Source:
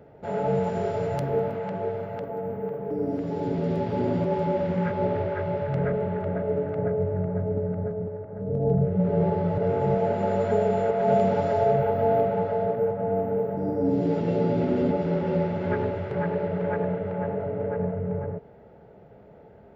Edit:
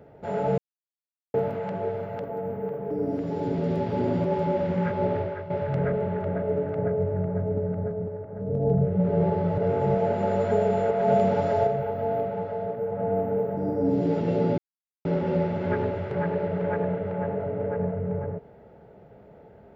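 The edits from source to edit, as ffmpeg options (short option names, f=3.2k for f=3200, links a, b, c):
-filter_complex "[0:a]asplit=8[a][b][c][d][e][f][g][h];[a]atrim=end=0.58,asetpts=PTS-STARTPTS,afade=t=out:st=0.576:d=0.004:c=hsin[i];[b]atrim=start=0.58:end=1.34,asetpts=PTS-STARTPTS,volume=0[j];[c]atrim=start=1.34:end=5.5,asetpts=PTS-STARTPTS,afade=t=in:d=0.004:c=hsin,afade=t=out:st=3.82:d=0.34:silence=0.266073[k];[d]atrim=start=5.5:end=11.672,asetpts=PTS-STARTPTS,afade=t=in:d=0.004:c=hsin:silence=0.266073[l];[e]atrim=start=11.668:end=12.922,asetpts=PTS-STARTPTS,volume=-5dB[m];[f]atrim=start=12.918:end=14.58,asetpts=PTS-STARTPTS,afade=t=out:st=1.658:d=0.004:c=hsin[n];[g]atrim=start=14.58:end=15.05,asetpts=PTS-STARTPTS,volume=0[o];[h]atrim=start=15.05,asetpts=PTS-STARTPTS,afade=t=in:d=0.004:c=hsin[p];[i][j][k][l]concat=n=4:v=0:a=1[q];[q][m]acrossfade=d=0.004:c1=hsin:c2=hsin[r];[n][o][p]concat=n=3:v=0:a=1[s];[r][s]acrossfade=d=0.004:c1=hsin:c2=hsin"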